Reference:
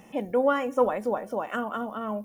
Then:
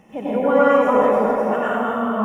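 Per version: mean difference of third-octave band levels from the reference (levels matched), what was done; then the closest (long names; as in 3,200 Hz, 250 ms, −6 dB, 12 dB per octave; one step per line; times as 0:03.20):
7.5 dB: high-shelf EQ 4,200 Hz −9 dB
dense smooth reverb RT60 2.1 s, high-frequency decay 0.85×, pre-delay 80 ms, DRR −9.5 dB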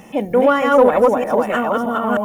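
4.0 dB: delay that plays each chunk backwards 310 ms, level 0 dB
in parallel at −5 dB: soft clipping −19 dBFS, distortion −13 dB
on the sum: level +6 dB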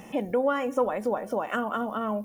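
2.5 dB: downward compressor 2 to 1, threshold −34 dBFS, peak gain reduction 9.5 dB
level +6 dB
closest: third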